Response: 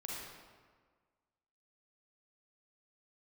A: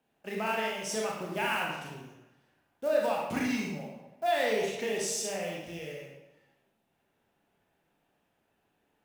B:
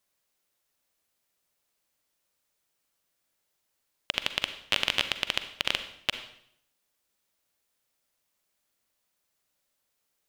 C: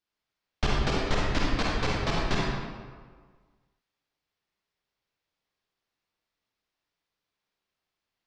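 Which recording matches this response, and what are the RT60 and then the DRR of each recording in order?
C; 0.95, 0.70, 1.6 s; -2.5, 9.5, -4.5 dB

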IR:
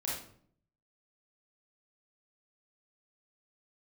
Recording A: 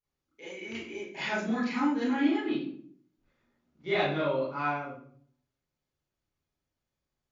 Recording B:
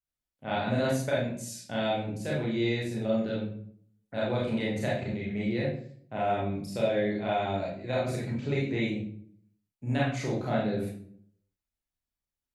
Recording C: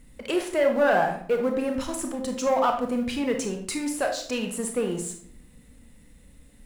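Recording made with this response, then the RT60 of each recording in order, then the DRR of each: B; 0.60, 0.60, 0.60 s; -12.5, -6.0, 3.5 dB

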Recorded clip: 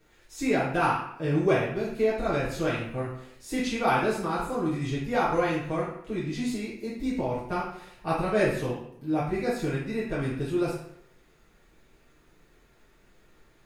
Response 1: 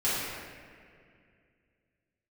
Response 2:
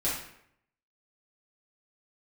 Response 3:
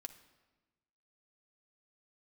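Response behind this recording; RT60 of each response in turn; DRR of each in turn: 2; 2.2, 0.70, 1.2 s; -12.0, -9.5, 6.5 dB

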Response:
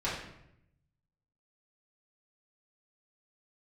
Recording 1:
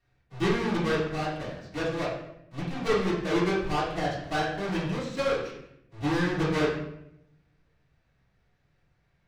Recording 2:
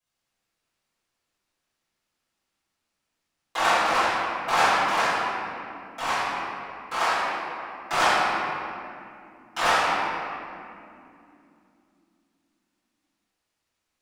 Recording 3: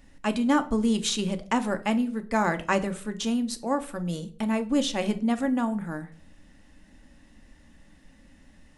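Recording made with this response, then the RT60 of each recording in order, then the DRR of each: 1; 0.80, 2.8, 0.45 s; -10.0, -16.0, 8.0 dB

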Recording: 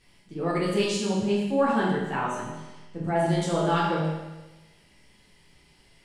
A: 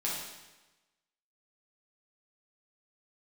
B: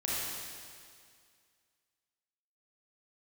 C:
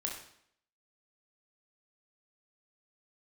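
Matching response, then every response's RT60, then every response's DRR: A; 1.1, 2.1, 0.65 s; -6.0, -7.5, -1.0 dB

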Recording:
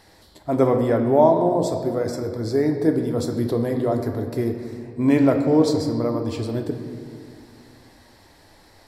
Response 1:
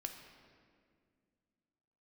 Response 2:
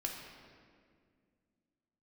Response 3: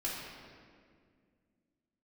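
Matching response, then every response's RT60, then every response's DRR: 1; 2.1, 2.0, 2.0 s; 3.5, -1.0, -7.5 dB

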